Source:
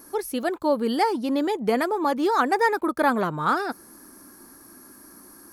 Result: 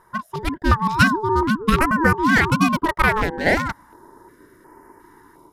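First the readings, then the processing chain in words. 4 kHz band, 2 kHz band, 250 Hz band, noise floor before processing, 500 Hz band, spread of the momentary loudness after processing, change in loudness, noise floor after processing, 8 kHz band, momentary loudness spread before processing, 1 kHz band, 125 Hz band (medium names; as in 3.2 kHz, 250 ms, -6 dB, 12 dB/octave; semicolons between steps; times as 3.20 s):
+6.0 dB, +10.0 dB, +4.5 dB, -49 dBFS, -1.0 dB, 11 LU, +4.5 dB, -54 dBFS, +4.5 dB, 6 LU, +3.0 dB, +16.5 dB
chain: local Wiener filter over 25 samples; bass shelf 320 Hz -11 dB; level rider gain up to 5.5 dB; ring modulator 650 Hz; loudness maximiser +10 dB; step-sequenced notch 2.8 Hz 280–3600 Hz; trim -1 dB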